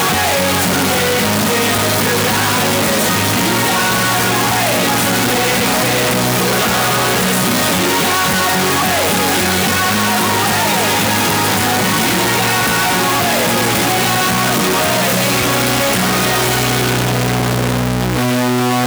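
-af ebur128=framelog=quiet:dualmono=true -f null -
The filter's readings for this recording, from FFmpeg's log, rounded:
Integrated loudness:
  I:         -10.1 LUFS
  Threshold: -20.1 LUFS
Loudness range:
  LRA:         0.5 LU
  Threshold: -30.0 LUFS
  LRA low:   -10.3 LUFS
  LRA high:   -9.8 LUFS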